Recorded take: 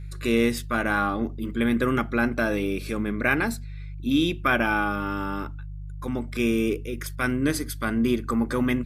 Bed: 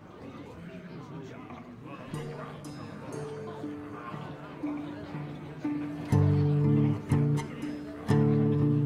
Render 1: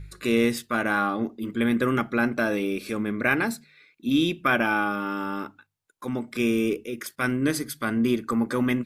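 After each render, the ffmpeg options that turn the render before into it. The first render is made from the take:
ffmpeg -i in.wav -af "bandreject=frequency=50:width_type=h:width=4,bandreject=frequency=100:width_type=h:width=4,bandreject=frequency=150:width_type=h:width=4" out.wav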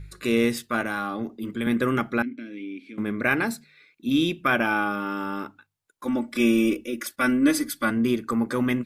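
ffmpeg -i in.wav -filter_complex "[0:a]asettb=1/sr,asplit=3[link_01][link_02][link_03];[link_01]atrim=end=0.814[link_04];[link_02]atrim=start=0.81:end=1.67,asetpts=PTS-STARTPTS,afade=type=in:duration=0.004:curve=qsin,afade=type=out:start_time=0.856:duration=0.004:curve=qsin,acrossover=split=140|3000[link_05][link_06][link_07];[link_06]acompressor=threshold=-27dB:ratio=2.5:attack=3.2:release=140:knee=2.83:detection=peak[link_08];[link_05][link_08][link_07]amix=inputs=3:normalize=0[link_09];[link_03]atrim=start=1.666[link_10];[link_04][link_09]acrossfade=duration=0.004:curve1=hsin:curve2=qsin[link_11];[link_11][link_10]acrossfade=duration=0.004:curve1=qsin:curve2=hsin,asettb=1/sr,asplit=3[link_12][link_13][link_14];[link_12]atrim=end=2.224[link_15];[link_13]atrim=start=2.22:end=2.98,asetpts=PTS-STARTPTS,afade=type=in:duration=0.004:curve=qsin,afade=type=out:start_time=0.756:duration=0.004:curve=qsin,asplit=3[link_16][link_17][link_18];[link_16]bandpass=frequency=270:width_type=q:width=8,volume=0dB[link_19];[link_17]bandpass=frequency=2290:width_type=q:width=8,volume=-6dB[link_20];[link_18]bandpass=frequency=3010:width_type=q:width=8,volume=-9dB[link_21];[link_19][link_20][link_21]amix=inputs=3:normalize=0[link_22];[link_14]atrim=start=2.976[link_23];[link_15][link_22]acrossfade=duration=0.004:curve1=hsin:curve2=qsin[link_24];[link_24][link_23]acrossfade=duration=0.004:curve1=qsin:curve2=hsin,asettb=1/sr,asplit=3[link_25][link_26][link_27];[link_25]atrim=end=6.054[link_28];[link_26]atrim=start=6.05:end=7.91,asetpts=PTS-STARTPTS,afade=type=in:duration=0.004:curve=qsin,afade=type=out:start_time=1.856:duration=0.004:curve=qsin,aecho=1:1:3.5:0.93,atrim=end_sample=82026[link_29];[link_27]atrim=start=7.906[link_30];[link_28][link_29]acrossfade=duration=0.004:curve1=hsin:curve2=qsin[link_31];[link_31][link_30]acrossfade=duration=0.004:curve1=qsin:curve2=hsin" out.wav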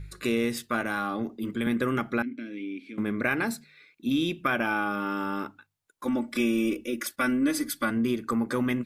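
ffmpeg -i in.wav -af "acompressor=threshold=-24dB:ratio=2.5" out.wav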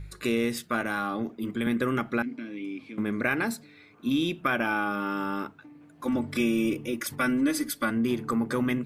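ffmpeg -i in.wav -i bed.wav -filter_complex "[1:a]volume=-18dB[link_01];[0:a][link_01]amix=inputs=2:normalize=0" out.wav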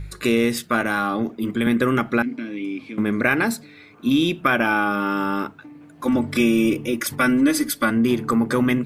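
ffmpeg -i in.wav -af "volume=7.5dB" out.wav

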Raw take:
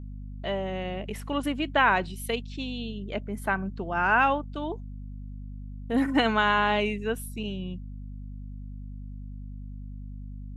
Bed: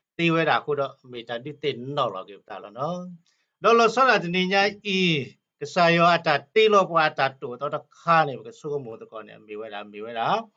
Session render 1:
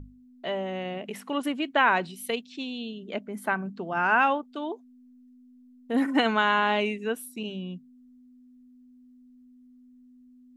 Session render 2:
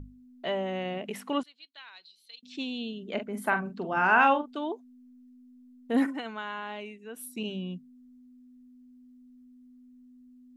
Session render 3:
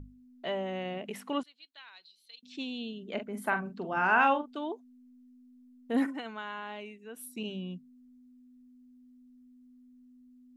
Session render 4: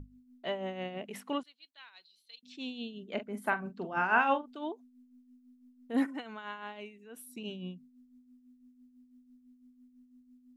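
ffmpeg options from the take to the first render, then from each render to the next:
ffmpeg -i in.wav -af "bandreject=frequency=50:width_type=h:width=6,bandreject=frequency=100:width_type=h:width=6,bandreject=frequency=150:width_type=h:width=6,bandreject=frequency=200:width_type=h:width=6" out.wav
ffmpeg -i in.wav -filter_complex "[0:a]asettb=1/sr,asplit=3[link_01][link_02][link_03];[link_01]atrim=end=1.434[link_04];[link_02]atrim=start=1.43:end=2.43,asetpts=PTS-STARTPTS,afade=type=in:duration=0.004:curve=qsin,afade=type=out:start_time=0.996:duration=0.004:curve=qsin,bandpass=frequency=4200:width_type=q:width=9.7[link_05];[link_03]atrim=start=2.426[link_06];[link_04][link_05]acrossfade=duration=0.004:curve1=hsin:curve2=qsin[link_07];[link_07][link_06]acrossfade=duration=0.004:curve1=qsin:curve2=hsin,asettb=1/sr,asplit=3[link_08][link_09][link_10];[link_08]atrim=end=3.134[link_11];[link_09]atrim=start=3.13:end=4.54,asetpts=PTS-STARTPTS,afade=type=in:duration=0.004:curve=qsin,afade=type=out:start_time=1.406:duration=0.004:curve=qsin,asplit=2[link_12][link_13];[link_13]adelay=44,volume=-8dB[link_14];[link_12][link_14]amix=inputs=2:normalize=0,atrim=end_sample=62181[link_15];[link_10]atrim=start=4.536[link_16];[link_11][link_15]acrossfade=duration=0.004:curve1=hsin:curve2=qsin[link_17];[link_17][link_16]acrossfade=duration=0.004:curve1=qsin:curve2=hsin,asplit=3[link_18][link_19][link_20];[link_18]atrim=end=6.16,asetpts=PTS-STARTPTS,afade=type=out:start_time=6.04:duration=0.12:silence=0.199526[link_21];[link_19]atrim=start=6.16:end=7.12,asetpts=PTS-STARTPTS,volume=-14dB[link_22];[link_20]atrim=start=7.12,asetpts=PTS-STARTPTS,afade=type=in:duration=0.12:silence=0.199526[link_23];[link_21][link_22][link_23]concat=n=3:v=0:a=1" out.wav
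ffmpeg -i in.wav -af "volume=-3dB" out.wav
ffmpeg -i in.wav -af "tremolo=f=6:d=0.57" out.wav

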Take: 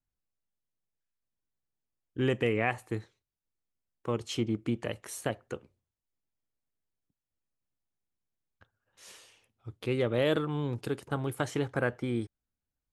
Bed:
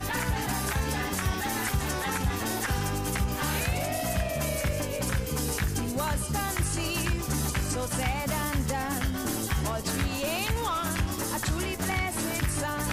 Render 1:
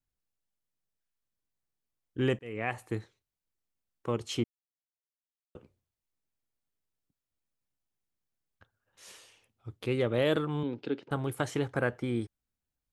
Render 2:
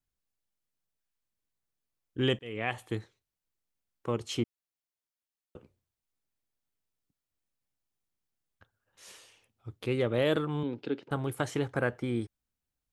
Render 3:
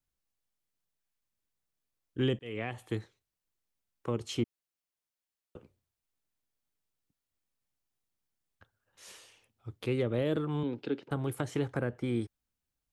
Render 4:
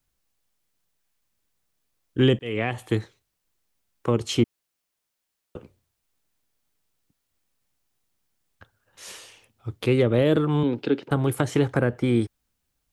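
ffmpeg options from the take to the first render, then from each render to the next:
ffmpeg -i in.wav -filter_complex "[0:a]asettb=1/sr,asplit=3[link_01][link_02][link_03];[link_01]atrim=end=10.634[link_04];[link_02]atrim=start=10.63:end=11.11,asetpts=PTS-STARTPTS,afade=type=in:duration=0.004:curve=qsin,afade=type=out:start_time=0.476:duration=0.004:curve=qsin,highpass=230,equalizer=frequency=270:width_type=q:width=4:gain=6,equalizer=frequency=710:width_type=q:width=4:gain=-4,equalizer=frequency=1100:width_type=q:width=4:gain=-9,equalizer=frequency=1800:width_type=q:width=4:gain=-4,lowpass=frequency=4100:width=0.5412,lowpass=frequency=4100:width=1.3066[link_05];[link_03]atrim=start=11.106[link_06];[link_04][link_05]acrossfade=duration=0.004:curve1=hsin:curve2=qsin[link_07];[link_07][link_06]acrossfade=duration=0.004:curve1=qsin:curve2=hsin,asplit=4[link_08][link_09][link_10][link_11];[link_08]atrim=end=2.39,asetpts=PTS-STARTPTS,afade=type=out:start_time=2.386:duration=0.004:curve=hsin[link_12];[link_09]atrim=start=2.39:end=4.44,asetpts=PTS-STARTPTS,afade=type=in:duration=0.43,afade=type=out:start_time=2.046:duration=0.004:curve=hsin[link_13];[link_10]atrim=start=4.44:end=5.55,asetpts=PTS-STARTPTS,volume=0[link_14];[link_11]atrim=start=5.55,asetpts=PTS-STARTPTS,afade=type=in:duration=0.004:curve=hsin[link_15];[link_12][link_13][link_14][link_15]concat=n=4:v=0:a=1" out.wav
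ffmpeg -i in.wav -filter_complex "[0:a]asettb=1/sr,asplit=3[link_01][link_02][link_03];[link_01]atrim=end=2.234[link_04];[link_02]atrim=start=2.23:end=2.97,asetpts=PTS-STARTPTS,afade=type=in:duration=0.004:curve=qsin,afade=type=out:start_time=0.736:duration=0.004:curve=qsin,equalizer=frequency=3300:width=4.8:gain=15[link_05];[link_03]atrim=start=2.966[link_06];[link_04][link_05]acrossfade=duration=0.004:curve1=hsin:curve2=qsin[link_07];[link_07][link_06]acrossfade=duration=0.004:curve1=qsin:curve2=hsin" out.wav
ffmpeg -i in.wav -filter_complex "[0:a]acrossover=split=450[link_01][link_02];[link_02]acompressor=threshold=-36dB:ratio=10[link_03];[link_01][link_03]amix=inputs=2:normalize=0" out.wav
ffmpeg -i in.wav -af "volume=10.5dB" out.wav

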